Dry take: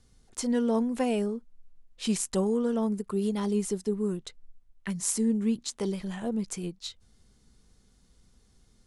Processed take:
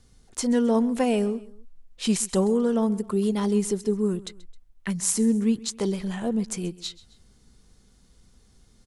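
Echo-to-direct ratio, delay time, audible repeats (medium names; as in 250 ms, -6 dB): -19.0 dB, 132 ms, 2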